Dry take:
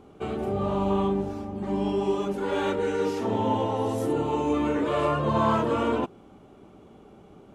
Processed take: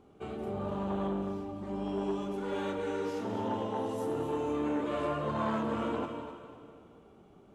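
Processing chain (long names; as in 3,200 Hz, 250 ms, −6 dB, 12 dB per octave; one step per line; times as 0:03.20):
feedback echo with a high-pass in the loop 251 ms, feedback 36%, level −11 dB
on a send at −8 dB: convolution reverb RT60 2.2 s, pre-delay 93 ms
on the sum: saturating transformer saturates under 530 Hz
level −8.5 dB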